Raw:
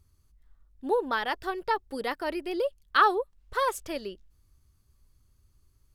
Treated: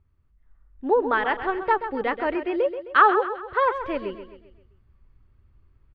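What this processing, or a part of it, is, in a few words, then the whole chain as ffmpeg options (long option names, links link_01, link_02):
action camera in a waterproof case: -filter_complex "[0:a]asettb=1/sr,asplit=3[link_01][link_02][link_03];[link_01]atrim=end=2.354[link_04];[link_02]atrim=start=2.35:end=3.74,asetpts=PTS-STARTPTS,afade=type=in:duration=0.004:curve=qsin,afade=type=out:start_time=1.386:duration=0.004:curve=qsin,highpass=73[link_05];[link_03]atrim=start=3.736[link_06];[link_04][link_05]acrossfade=duration=0.004:curve1=hsin:curve2=qsin[link_07];[link_07][link_06]acrossfade=duration=0.004:curve1=qsin:curve2=hsin,lowpass=frequency=2600:width=0.5412,lowpass=frequency=2600:width=1.3066,aecho=1:1:131|262|393|524|655:0.299|0.137|0.0632|0.0291|0.0134,dynaudnorm=framelen=390:gausssize=3:maxgain=7dB,volume=-1dB" -ar 22050 -c:a aac -b:a 96k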